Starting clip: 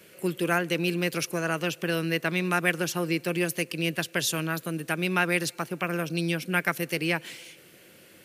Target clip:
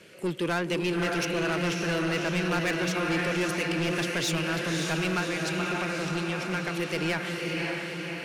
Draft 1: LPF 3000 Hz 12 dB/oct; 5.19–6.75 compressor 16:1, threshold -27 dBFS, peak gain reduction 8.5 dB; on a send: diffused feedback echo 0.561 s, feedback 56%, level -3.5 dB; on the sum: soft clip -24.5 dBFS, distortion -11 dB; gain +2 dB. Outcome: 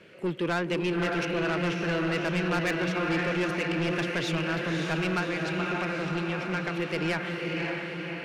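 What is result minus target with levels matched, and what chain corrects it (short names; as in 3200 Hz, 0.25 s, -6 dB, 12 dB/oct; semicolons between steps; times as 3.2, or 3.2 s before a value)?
8000 Hz band -8.5 dB
LPF 6800 Hz 12 dB/oct; 5.19–6.75 compressor 16:1, threshold -27 dBFS, peak gain reduction 9 dB; on a send: diffused feedback echo 0.561 s, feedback 56%, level -3.5 dB; on the sum: soft clip -24.5 dBFS, distortion -10 dB; gain +2 dB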